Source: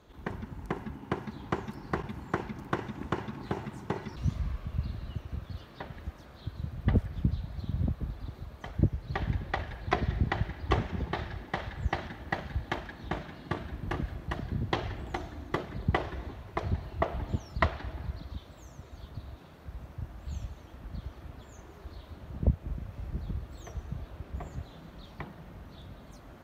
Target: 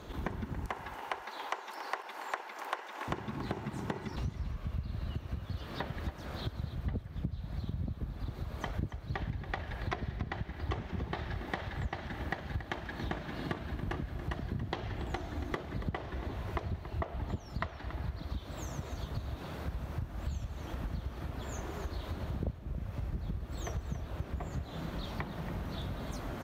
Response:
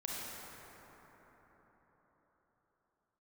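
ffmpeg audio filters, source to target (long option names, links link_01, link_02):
-filter_complex "[0:a]asettb=1/sr,asplit=3[link_01][link_02][link_03];[link_01]atrim=end=0.664[link_04];[link_02]atrim=start=0.66:end=3.08,asetpts=PTS-STARTPTS,afade=type=in:duration=0.004:curve=qsin,afade=type=out:start_time=2.416:duration=0.004:curve=qsin,highpass=frequency=530:width=0.5412,highpass=frequency=530:width=1.3066[link_05];[link_03]atrim=start=3.076[link_06];[link_04][link_05]acrossfade=duration=0.004:curve1=hsin:curve2=qsin[link_07];[link_07][link_06]acrossfade=duration=0.004:curve1=qsin:curve2=hsin,acompressor=threshold=-45dB:ratio=8,aecho=1:1:281|562|843:0.237|0.0498|0.0105,volume=11dB"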